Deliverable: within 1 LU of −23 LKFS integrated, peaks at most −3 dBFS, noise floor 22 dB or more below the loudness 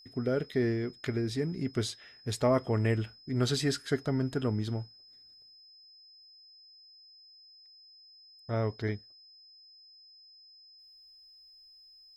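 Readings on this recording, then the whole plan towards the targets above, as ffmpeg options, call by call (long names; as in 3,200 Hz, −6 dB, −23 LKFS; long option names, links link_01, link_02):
interfering tone 5,100 Hz; level of the tone −54 dBFS; integrated loudness −32.0 LKFS; sample peak −16.0 dBFS; target loudness −23.0 LKFS
→ -af "bandreject=frequency=5100:width=30"
-af "volume=9dB"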